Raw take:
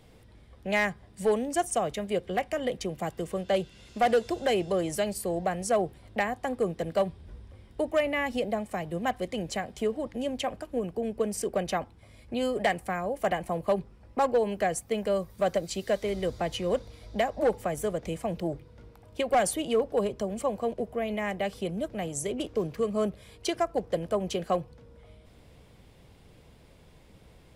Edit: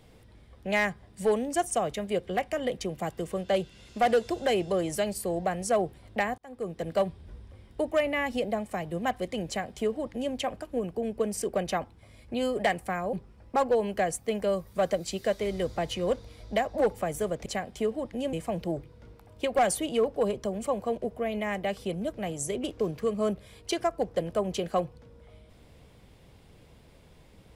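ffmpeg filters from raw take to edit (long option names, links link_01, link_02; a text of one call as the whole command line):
ffmpeg -i in.wav -filter_complex "[0:a]asplit=5[link_01][link_02][link_03][link_04][link_05];[link_01]atrim=end=6.38,asetpts=PTS-STARTPTS,afade=type=out:start_time=6.376:duration=0.004:curve=hsin[link_06];[link_02]atrim=start=6.38:end=13.132,asetpts=PTS-STARTPTS,afade=type=in:duration=0.54[link_07];[link_03]atrim=start=13.758:end=18.092[link_08];[link_04]atrim=start=9.468:end=10.342[link_09];[link_05]atrim=start=18.088[link_10];[link_06][link_07]concat=n=2:v=0:a=1[link_11];[link_11][link_08]acrossfade=duration=0.004:curve1=hsin:curve2=hsin[link_12];[link_12][link_09]acrossfade=duration=0.004:curve1=hsin:curve2=hsin[link_13];[link_13][link_10]acrossfade=duration=0.004:curve1=hsin:curve2=hsin" out.wav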